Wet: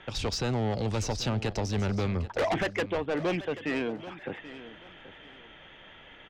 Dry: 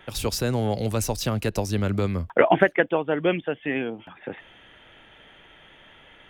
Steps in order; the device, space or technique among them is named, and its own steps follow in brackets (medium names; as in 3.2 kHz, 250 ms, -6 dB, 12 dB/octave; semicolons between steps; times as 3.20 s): low-pass 6.3 kHz 24 dB/octave; saturation between pre-emphasis and de-emphasis (treble shelf 10 kHz +8 dB; saturation -24 dBFS, distortion -5 dB; treble shelf 10 kHz -8 dB); feedback delay 783 ms, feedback 24%, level -15 dB